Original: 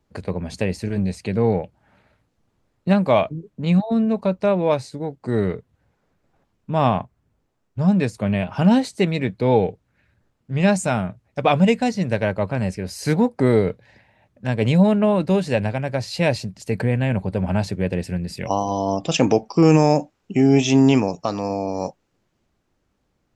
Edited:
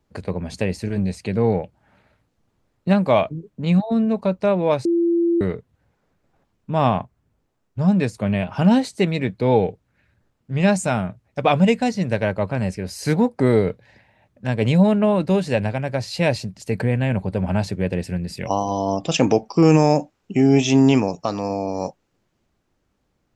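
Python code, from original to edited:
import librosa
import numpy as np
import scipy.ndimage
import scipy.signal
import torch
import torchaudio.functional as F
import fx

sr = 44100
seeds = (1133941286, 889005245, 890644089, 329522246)

y = fx.edit(x, sr, fx.bleep(start_s=4.85, length_s=0.56, hz=340.0, db=-15.0), tone=tone)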